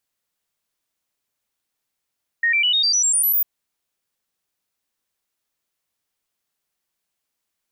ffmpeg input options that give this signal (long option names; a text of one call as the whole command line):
ffmpeg -f lavfi -i "aevalsrc='0.178*clip(min(mod(t,0.1),0.1-mod(t,0.1))/0.005,0,1)*sin(2*PI*1860*pow(2,floor(t/0.1)/3)*mod(t,0.1))':duration=1:sample_rate=44100" out.wav